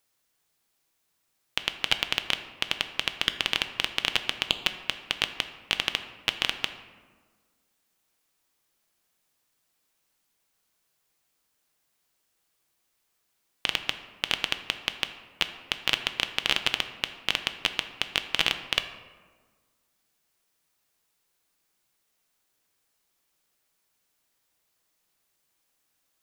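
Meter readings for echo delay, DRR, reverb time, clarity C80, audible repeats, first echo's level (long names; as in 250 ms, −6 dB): no echo audible, 8.0 dB, 1.5 s, 12.0 dB, no echo audible, no echo audible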